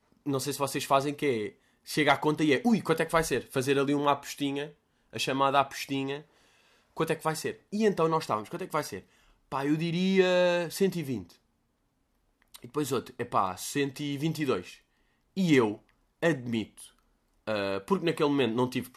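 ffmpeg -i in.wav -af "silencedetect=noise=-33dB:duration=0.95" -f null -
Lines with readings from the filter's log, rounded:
silence_start: 11.21
silence_end: 12.55 | silence_duration: 1.33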